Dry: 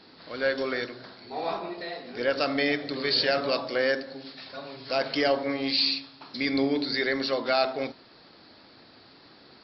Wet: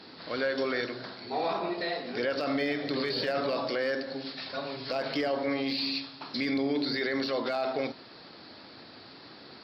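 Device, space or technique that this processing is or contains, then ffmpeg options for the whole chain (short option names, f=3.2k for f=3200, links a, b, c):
podcast mastering chain: -af "highpass=73,deesser=0.9,acompressor=threshold=-30dB:ratio=2,alimiter=level_in=1dB:limit=-24dB:level=0:latency=1:release=18,volume=-1dB,volume=4.5dB" -ar 48000 -c:a libmp3lame -b:a 96k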